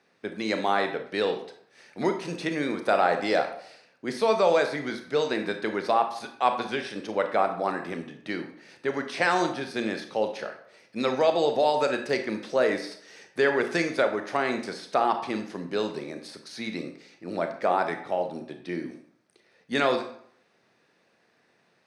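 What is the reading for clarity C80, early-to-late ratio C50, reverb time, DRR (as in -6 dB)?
12.0 dB, 8.5 dB, 0.65 s, 6.0 dB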